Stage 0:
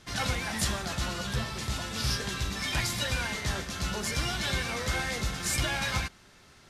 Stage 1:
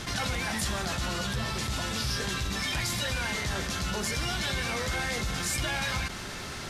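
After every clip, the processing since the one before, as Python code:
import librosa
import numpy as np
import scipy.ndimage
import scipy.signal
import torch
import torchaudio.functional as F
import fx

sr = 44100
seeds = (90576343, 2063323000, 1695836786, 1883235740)

y = fx.env_flatten(x, sr, amount_pct=70)
y = y * 10.0 ** (-3.5 / 20.0)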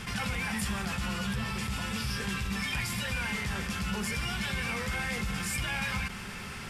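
y = fx.graphic_eq_31(x, sr, hz=(200, 315, 630, 2500, 4000, 6300), db=(7, -11, -9, 5, -8, -7))
y = y * 10.0 ** (-2.0 / 20.0)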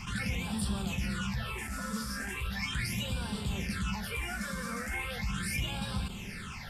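y = fx.phaser_stages(x, sr, stages=8, low_hz=100.0, high_hz=2100.0, hz=0.38, feedback_pct=25)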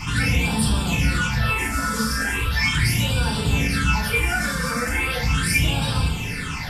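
y = fx.rev_fdn(x, sr, rt60_s=0.43, lf_ratio=1.1, hf_ratio=0.8, size_ms=20.0, drr_db=-3.5)
y = y * 10.0 ** (8.5 / 20.0)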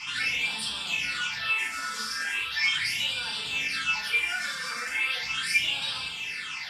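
y = fx.bandpass_q(x, sr, hz=3300.0, q=1.2)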